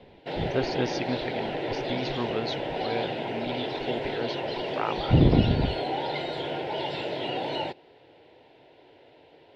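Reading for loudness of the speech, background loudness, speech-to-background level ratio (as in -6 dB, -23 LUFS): -29.5 LUFS, -31.5 LUFS, 2.0 dB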